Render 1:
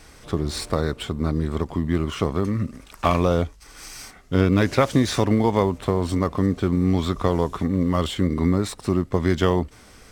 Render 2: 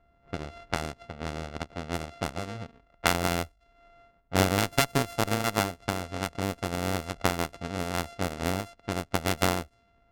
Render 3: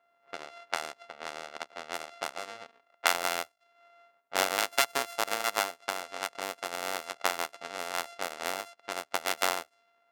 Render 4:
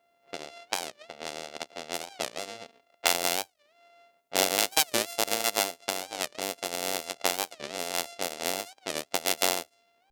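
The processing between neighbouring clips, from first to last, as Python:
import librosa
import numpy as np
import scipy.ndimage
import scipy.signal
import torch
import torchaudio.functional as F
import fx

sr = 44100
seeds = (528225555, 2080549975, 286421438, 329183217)

y1 = np.r_[np.sort(x[:len(x) // 64 * 64].reshape(-1, 64), axis=1).ravel(), x[len(x) // 64 * 64:]]
y1 = fx.cheby_harmonics(y1, sr, harmonics=(3,), levels_db=(-11,), full_scale_db=-4.0)
y1 = fx.env_lowpass(y1, sr, base_hz=1800.0, full_db=-25.5)
y2 = scipy.signal.sosfilt(scipy.signal.butter(2, 670.0, 'highpass', fs=sr, output='sos'), y1)
y3 = fx.peak_eq(y2, sr, hz=1300.0, db=-13.0, octaves=1.6)
y3 = np.clip(10.0 ** (10.5 / 20.0) * y3, -1.0, 1.0) / 10.0 ** (10.5 / 20.0)
y3 = fx.record_warp(y3, sr, rpm=45.0, depth_cents=250.0)
y3 = y3 * 10.0 ** (8.0 / 20.0)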